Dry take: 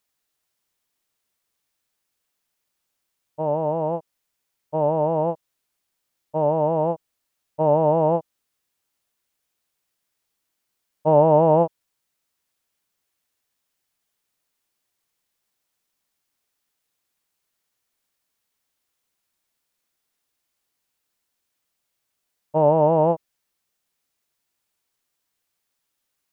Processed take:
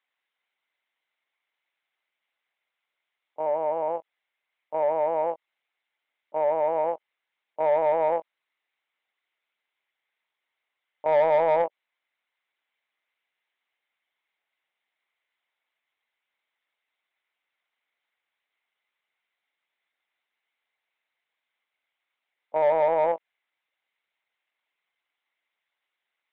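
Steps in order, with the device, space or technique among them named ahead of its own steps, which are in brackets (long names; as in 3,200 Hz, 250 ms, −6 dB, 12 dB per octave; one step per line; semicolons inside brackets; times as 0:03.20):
talking toy (linear-prediction vocoder at 8 kHz pitch kept; high-pass filter 510 Hz 12 dB per octave; parametric band 2,100 Hz +9.5 dB 0.28 octaves; soft clipping −14 dBFS, distortion −16 dB)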